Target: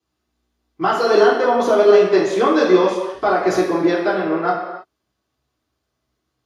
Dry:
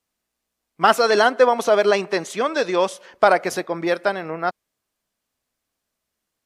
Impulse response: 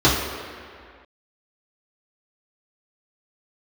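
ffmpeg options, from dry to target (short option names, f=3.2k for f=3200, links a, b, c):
-filter_complex "[0:a]alimiter=limit=-11.5dB:level=0:latency=1:release=240[a];[1:a]atrim=start_sample=2205,afade=t=out:st=0.39:d=0.01,atrim=end_sample=17640[b];[a][b]afir=irnorm=-1:irlink=0,volume=-17dB"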